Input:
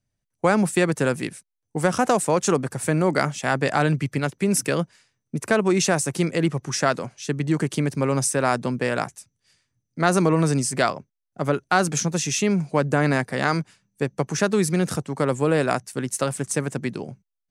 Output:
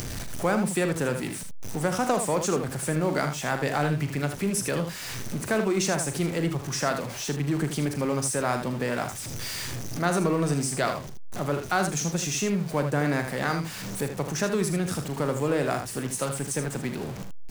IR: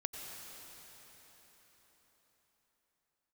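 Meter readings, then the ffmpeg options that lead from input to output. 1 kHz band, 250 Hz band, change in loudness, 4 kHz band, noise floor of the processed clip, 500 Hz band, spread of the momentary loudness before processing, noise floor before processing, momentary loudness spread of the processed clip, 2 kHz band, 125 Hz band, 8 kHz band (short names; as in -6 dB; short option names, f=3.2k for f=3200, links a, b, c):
-5.0 dB, -4.5 dB, -4.5 dB, -2.5 dB, -36 dBFS, -4.5 dB, 9 LU, -81 dBFS, 8 LU, -5.0 dB, -4.0 dB, -3.0 dB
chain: -af "aeval=exprs='val(0)+0.5*0.0422*sgn(val(0))':c=same,acompressor=mode=upward:threshold=-23dB:ratio=2.5,aecho=1:1:41|78:0.282|0.398,volume=-7dB"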